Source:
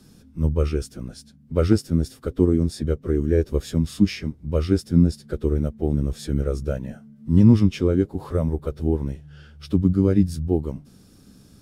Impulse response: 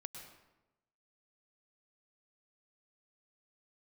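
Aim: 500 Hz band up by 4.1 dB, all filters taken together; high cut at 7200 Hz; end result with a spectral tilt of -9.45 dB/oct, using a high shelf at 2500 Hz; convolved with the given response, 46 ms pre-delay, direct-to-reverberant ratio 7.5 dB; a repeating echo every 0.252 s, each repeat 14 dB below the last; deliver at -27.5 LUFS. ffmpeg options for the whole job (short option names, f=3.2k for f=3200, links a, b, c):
-filter_complex "[0:a]lowpass=7.2k,equalizer=f=500:t=o:g=5,highshelf=f=2.5k:g=5.5,aecho=1:1:252|504:0.2|0.0399,asplit=2[a][b];[1:a]atrim=start_sample=2205,adelay=46[c];[b][c]afir=irnorm=-1:irlink=0,volume=-3.5dB[d];[a][d]amix=inputs=2:normalize=0,volume=-7.5dB"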